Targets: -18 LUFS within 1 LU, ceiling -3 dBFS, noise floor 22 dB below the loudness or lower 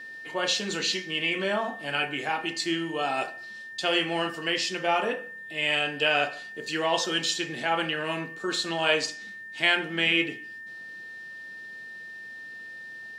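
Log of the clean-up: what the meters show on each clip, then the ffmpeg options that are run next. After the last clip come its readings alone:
steady tone 1800 Hz; tone level -39 dBFS; loudness -27.0 LUFS; peak -9.0 dBFS; loudness target -18.0 LUFS
-> -af "bandreject=f=1.8k:w=30"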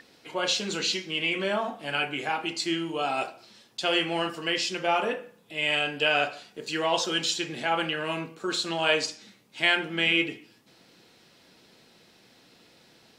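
steady tone none; loudness -27.0 LUFS; peak -9.0 dBFS; loudness target -18.0 LUFS
-> -af "volume=9dB,alimiter=limit=-3dB:level=0:latency=1"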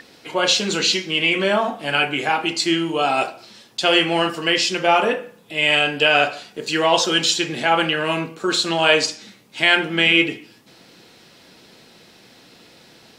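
loudness -18.5 LUFS; peak -3.0 dBFS; noise floor -50 dBFS

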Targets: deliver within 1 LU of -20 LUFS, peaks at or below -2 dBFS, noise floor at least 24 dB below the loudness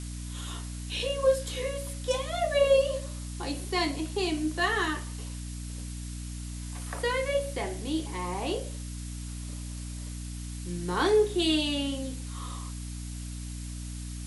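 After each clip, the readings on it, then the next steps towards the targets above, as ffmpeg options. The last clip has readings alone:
hum 60 Hz; harmonics up to 300 Hz; hum level -35 dBFS; noise floor -38 dBFS; noise floor target -55 dBFS; loudness -31.0 LUFS; peak -12.0 dBFS; loudness target -20.0 LUFS
-> -af "bandreject=f=60:t=h:w=6,bandreject=f=120:t=h:w=6,bandreject=f=180:t=h:w=6,bandreject=f=240:t=h:w=6,bandreject=f=300:t=h:w=6"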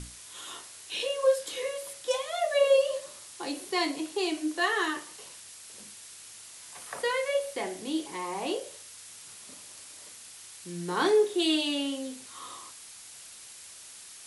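hum none; noise floor -48 dBFS; noise floor target -54 dBFS
-> -af "afftdn=nr=6:nf=-48"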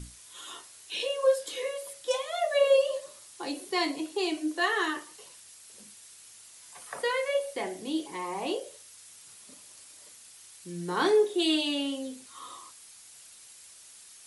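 noise floor -52 dBFS; noise floor target -53 dBFS
-> -af "afftdn=nr=6:nf=-52"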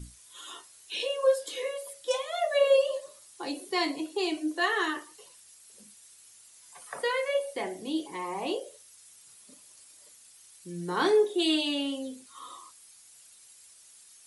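noise floor -55 dBFS; loudness -29.0 LUFS; peak -13.0 dBFS; loudness target -20.0 LUFS
-> -af "volume=9dB"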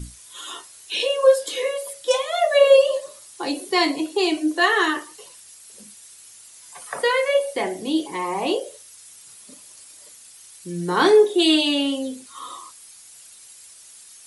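loudness -20.0 LUFS; peak -4.0 dBFS; noise floor -46 dBFS

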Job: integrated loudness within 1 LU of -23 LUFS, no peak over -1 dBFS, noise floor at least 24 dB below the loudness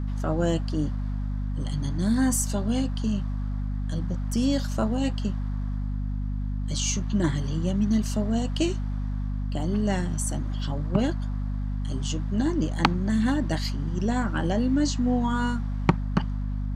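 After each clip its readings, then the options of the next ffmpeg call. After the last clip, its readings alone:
hum 50 Hz; harmonics up to 250 Hz; hum level -26 dBFS; loudness -27.0 LUFS; peak -2.5 dBFS; loudness target -23.0 LUFS
-> -af "bandreject=f=50:t=h:w=4,bandreject=f=100:t=h:w=4,bandreject=f=150:t=h:w=4,bandreject=f=200:t=h:w=4,bandreject=f=250:t=h:w=4"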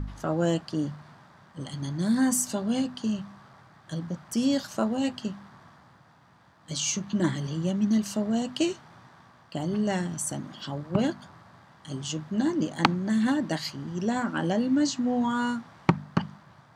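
hum none; loudness -28.0 LUFS; peak -2.0 dBFS; loudness target -23.0 LUFS
-> -af "volume=5dB,alimiter=limit=-1dB:level=0:latency=1"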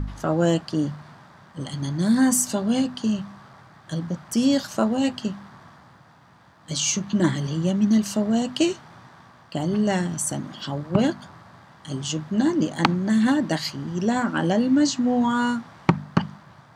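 loudness -23.5 LUFS; peak -1.0 dBFS; noise floor -52 dBFS

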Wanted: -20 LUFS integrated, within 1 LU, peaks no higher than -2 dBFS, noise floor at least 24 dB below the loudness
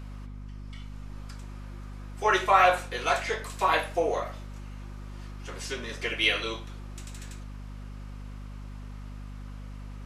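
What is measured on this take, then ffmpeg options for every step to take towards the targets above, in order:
hum 50 Hz; harmonics up to 250 Hz; hum level -38 dBFS; loudness -26.5 LUFS; peak -7.0 dBFS; loudness target -20.0 LUFS
-> -af "bandreject=f=50:t=h:w=4,bandreject=f=100:t=h:w=4,bandreject=f=150:t=h:w=4,bandreject=f=200:t=h:w=4,bandreject=f=250:t=h:w=4"
-af "volume=6.5dB,alimiter=limit=-2dB:level=0:latency=1"

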